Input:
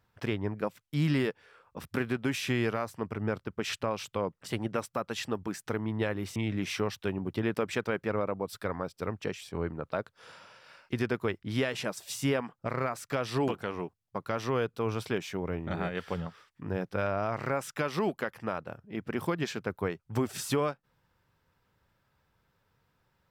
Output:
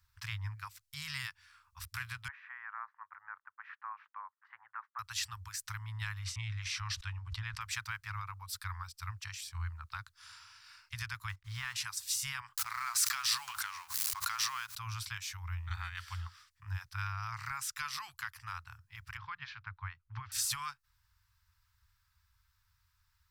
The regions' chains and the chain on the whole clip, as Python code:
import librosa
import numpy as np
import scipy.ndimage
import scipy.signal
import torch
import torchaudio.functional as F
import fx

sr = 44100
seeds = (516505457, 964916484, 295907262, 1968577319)

y = fx.chain(x, sr, fx.cheby1_bandpass(low_hz=520.0, high_hz=1800.0, order=3),
    fx.tilt_eq(slope=-2.5), at=(2.28, 4.99))
y = fx.chain(y, sr, fx.air_absorb(metres=72.0),
    fx.sustainer(db_per_s=140.0), at=(6.19, 7.61))
y = fx.chain(y, sr, fx.block_float(bits=5),
    fx.lowpass(hz=2000.0, slope=6),
    fx.dynamic_eq(hz=1000.0, q=1.2, threshold_db=-48.0, ratio=4.0, max_db=5), at=(11.29, 11.76))
y = fx.chain(y, sr, fx.law_mismatch(coded='mu'),
    fx.highpass(hz=410.0, slope=12),
    fx.pre_swell(db_per_s=29.0), at=(12.57, 14.78))
y = fx.chain(y, sr, fx.gaussian_blur(sigma=2.8),
    fx.peak_eq(hz=71.0, db=-9.0, octaves=0.63), at=(19.17, 20.32))
y = scipy.signal.sosfilt(scipy.signal.cheby2(4, 50, [180.0, 630.0], 'bandstop', fs=sr, output='sos'), y)
y = fx.band_shelf(y, sr, hz=2100.0, db=-8.0, octaves=1.7)
y = y * 10.0 ** (5.0 / 20.0)